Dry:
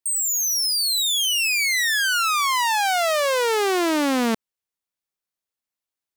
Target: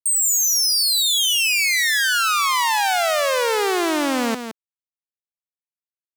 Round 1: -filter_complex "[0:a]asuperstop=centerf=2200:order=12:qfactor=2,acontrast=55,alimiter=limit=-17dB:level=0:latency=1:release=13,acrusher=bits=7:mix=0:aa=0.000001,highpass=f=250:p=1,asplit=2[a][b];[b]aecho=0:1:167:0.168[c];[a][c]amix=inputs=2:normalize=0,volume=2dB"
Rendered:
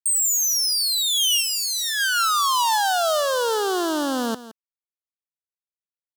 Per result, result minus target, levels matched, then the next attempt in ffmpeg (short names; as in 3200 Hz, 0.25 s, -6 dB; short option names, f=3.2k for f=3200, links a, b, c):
echo-to-direct -6.5 dB; 2000 Hz band -4.0 dB
-filter_complex "[0:a]asuperstop=centerf=2200:order=12:qfactor=2,acontrast=55,alimiter=limit=-17dB:level=0:latency=1:release=13,acrusher=bits=7:mix=0:aa=0.000001,highpass=f=250:p=1,asplit=2[a][b];[b]aecho=0:1:167:0.355[c];[a][c]amix=inputs=2:normalize=0,volume=2dB"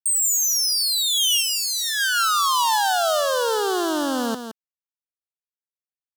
2000 Hz band -4.0 dB
-filter_complex "[0:a]acontrast=55,alimiter=limit=-17dB:level=0:latency=1:release=13,acrusher=bits=7:mix=0:aa=0.000001,highpass=f=250:p=1,asplit=2[a][b];[b]aecho=0:1:167:0.355[c];[a][c]amix=inputs=2:normalize=0,volume=2dB"